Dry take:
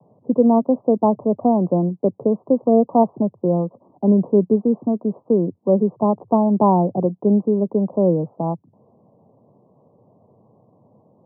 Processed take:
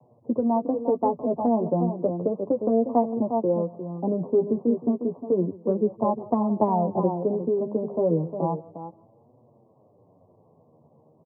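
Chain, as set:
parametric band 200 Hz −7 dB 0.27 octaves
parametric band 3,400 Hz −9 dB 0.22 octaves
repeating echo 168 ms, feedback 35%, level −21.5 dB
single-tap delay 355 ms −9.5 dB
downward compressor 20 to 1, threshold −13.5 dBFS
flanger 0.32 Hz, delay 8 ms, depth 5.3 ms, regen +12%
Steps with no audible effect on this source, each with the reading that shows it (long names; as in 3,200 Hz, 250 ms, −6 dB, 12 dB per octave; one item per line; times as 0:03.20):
parametric band 3,400 Hz: nothing at its input above 1,100 Hz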